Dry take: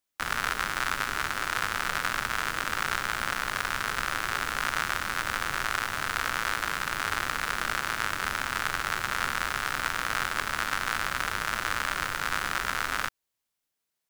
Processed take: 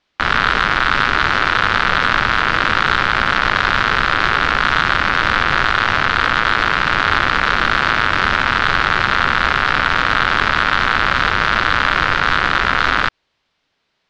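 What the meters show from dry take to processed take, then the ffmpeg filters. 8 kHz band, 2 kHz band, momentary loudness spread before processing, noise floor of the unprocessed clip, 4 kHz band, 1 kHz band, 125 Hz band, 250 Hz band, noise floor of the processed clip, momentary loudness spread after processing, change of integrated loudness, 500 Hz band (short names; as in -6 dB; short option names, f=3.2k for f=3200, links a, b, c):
-1.5 dB, +14.5 dB, 1 LU, -83 dBFS, +14.0 dB, +15.0 dB, +16.5 dB, +16.5 dB, -70 dBFS, 0 LU, +14.5 dB, +15.5 dB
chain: -filter_complex "[0:a]asplit=2[a][b];[b]aeval=exprs='(mod(6.68*val(0)+1,2)-1)/6.68':c=same,volume=-6dB[c];[a][c]amix=inputs=2:normalize=0,lowpass=f=4.4k:w=0.5412,lowpass=f=4.4k:w=1.3066,alimiter=level_in=18dB:limit=-1dB:release=50:level=0:latency=1,volume=-1dB"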